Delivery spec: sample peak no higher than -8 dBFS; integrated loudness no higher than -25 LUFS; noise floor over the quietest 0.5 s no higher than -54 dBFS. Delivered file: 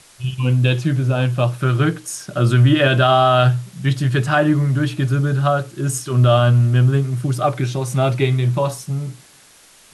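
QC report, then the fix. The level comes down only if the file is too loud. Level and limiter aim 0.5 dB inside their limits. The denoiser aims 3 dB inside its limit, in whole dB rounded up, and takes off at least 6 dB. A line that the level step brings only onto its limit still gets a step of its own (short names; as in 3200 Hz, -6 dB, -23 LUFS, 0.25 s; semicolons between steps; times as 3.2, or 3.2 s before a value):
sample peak -4.5 dBFS: fail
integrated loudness -17.5 LUFS: fail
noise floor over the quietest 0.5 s -49 dBFS: fail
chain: gain -8 dB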